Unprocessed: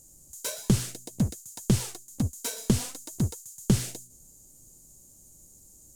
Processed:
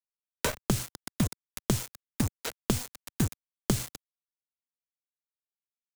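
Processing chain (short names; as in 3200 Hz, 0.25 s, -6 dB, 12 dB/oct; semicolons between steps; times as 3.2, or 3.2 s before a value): 2.29–2.82 low-pass opened by the level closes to 2800 Hz, open at -21 dBFS; bit-crush 5-bit; three-band squash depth 100%; gain -2 dB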